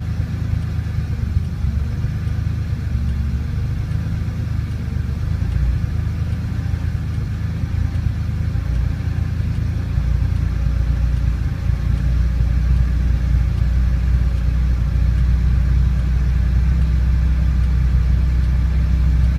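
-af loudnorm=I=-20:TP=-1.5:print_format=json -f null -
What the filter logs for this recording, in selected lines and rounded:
"input_i" : "-20.0",
"input_tp" : "-4.3",
"input_lra" : "4.2",
"input_thresh" : "-30.0",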